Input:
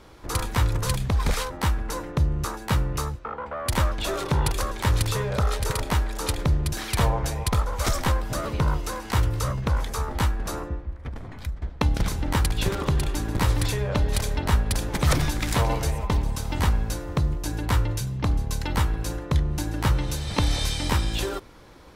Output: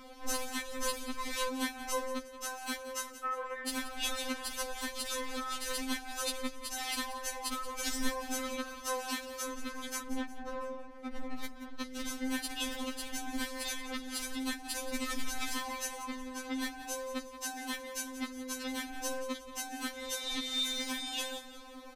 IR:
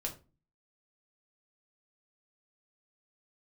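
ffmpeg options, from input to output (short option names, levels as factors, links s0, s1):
-filter_complex "[0:a]asettb=1/sr,asplit=3[s0][s1][s2];[s0]atrim=end=16.024[s3];[s1]atrim=start=16.02:end=16.63,asetpts=PTS-STARTPTS,afade=t=in:d=0.004:c=qsin,afade=t=out:st=0.606:d=0.004:c=qsin,aemphasis=mode=reproduction:type=cd[s4];[s2]atrim=start=16.626[s5];[s3][s4]acrossfade=d=0.004:c1=hsin:c2=qsin[s6];[s6][s5]acrossfade=d=0.004:c1=qsin:c2=hsin,acrossover=split=360|1300|2100[s7][s8][s9][s10];[s8]acompressor=threshold=0.00631:ratio=6[s11];[s7][s11][s9][s10]amix=inputs=4:normalize=0,alimiter=limit=0.1:level=0:latency=1:release=353,asettb=1/sr,asplit=3[s12][s13][s14];[s12]atrim=end=10.014[s15];[s13]atrim=start=10.01:end=10.62,asetpts=PTS-STARTPTS,afade=t=in:d=0.004:c=qsin,afade=t=out:st=0.606:d=0.004:c=qsin,adynamicsmooth=sensitivity=3.5:basefreq=640[s16];[s14]atrim=start=10.616[s17];[s15][s16]acrossfade=d=0.004:c1=hsin:c2=qsin[s18];[s18][s17]acrossfade=d=0.004:c1=qsin:c2=hsin,asettb=1/sr,asplit=3[s19][s20][s21];[s19]atrim=end=20.534[s22];[s20]atrim=start=20.53:end=21.03,asetpts=PTS-STARTPTS,afade=t=in:d=0.004:c=qsin,afade=t=out:st=0.496:d=0.004:c=qsin,aeval=exprs='sgn(val(0))*max(abs(val(0))-0.00355,0)':c=same[s23];[s21]atrim=start=21.026[s24];[s22][s23]acrossfade=d=0.004:c1=hsin:c2=qsin[s25];[s25][s24]acrossfade=d=0.004:c1=qsin:c2=hsin,aecho=1:1:178|356|534|712:0.2|0.0838|0.0352|0.0148,afftfilt=real='re*3.46*eq(mod(b,12),0)':imag='im*3.46*eq(mod(b,12),0)':win_size=2048:overlap=0.75,volume=1.19"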